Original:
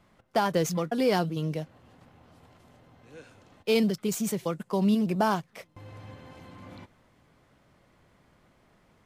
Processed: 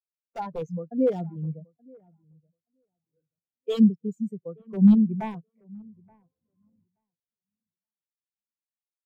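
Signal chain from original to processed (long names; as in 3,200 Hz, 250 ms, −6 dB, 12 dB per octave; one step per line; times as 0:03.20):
wrap-around overflow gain 16.5 dB
delay with a low-pass on its return 876 ms, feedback 32%, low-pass 2,300 Hz, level −11 dB
every bin expanded away from the loudest bin 2.5 to 1
level +7.5 dB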